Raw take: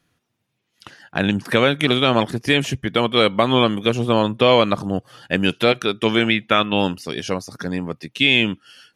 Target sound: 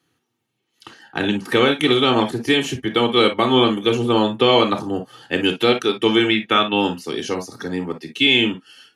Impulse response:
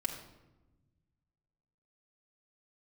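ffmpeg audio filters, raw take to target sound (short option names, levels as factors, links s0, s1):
-filter_complex "[0:a]highpass=160[s0];[1:a]atrim=start_sample=2205,atrim=end_sample=3969,asetrate=61740,aresample=44100[s1];[s0][s1]afir=irnorm=-1:irlink=0,volume=1.19"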